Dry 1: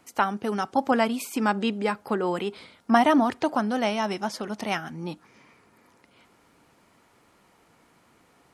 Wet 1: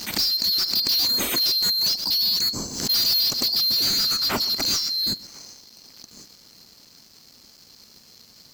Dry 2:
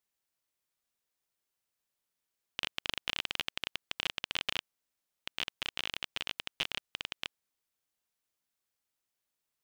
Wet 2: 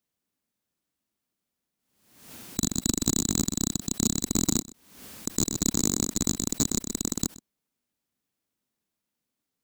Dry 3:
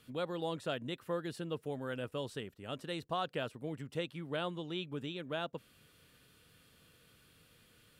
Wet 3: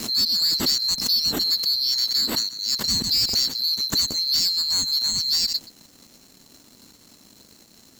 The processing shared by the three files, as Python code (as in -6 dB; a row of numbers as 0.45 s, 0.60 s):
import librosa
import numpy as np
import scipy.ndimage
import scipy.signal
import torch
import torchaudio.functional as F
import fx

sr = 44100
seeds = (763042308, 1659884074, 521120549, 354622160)

y = fx.band_swap(x, sr, width_hz=4000)
y = fx.peak_eq(y, sr, hz=240.0, db=9.0, octaves=0.99)
y = np.clip(y, -10.0 ** (-22.5 / 20.0), 10.0 ** (-22.5 / 20.0))
y = fx.highpass(y, sr, hz=49.0, slope=6)
y = fx.leveller(y, sr, passes=3)
y = fx.low_shelf(y, sr, hz=420.0, db=8.5)
y = y + 10.0 ** (-20.0 / 20.0) * np.pad(y, (int(126 * sr / 1000.0), 0))[:len(y)]
y = fx.pre_swell(y, sr, db_per_s=73.0)
y = librosa.util.normalize(y) * 10.0 ** (-9 / 20.0)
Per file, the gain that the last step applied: +2.5 dB, +6.0 dB, +8.0 dB